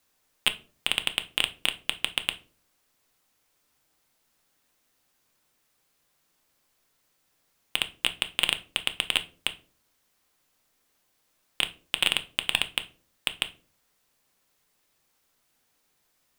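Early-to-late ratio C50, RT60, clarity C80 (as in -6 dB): 17.5 dB, 0.40 s, 23.5 dB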